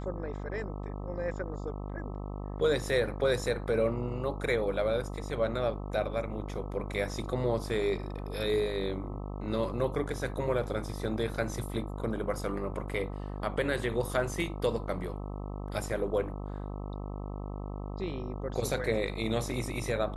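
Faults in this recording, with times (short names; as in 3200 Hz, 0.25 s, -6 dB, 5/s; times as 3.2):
buzz 50 Hz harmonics 26 -38 dBFS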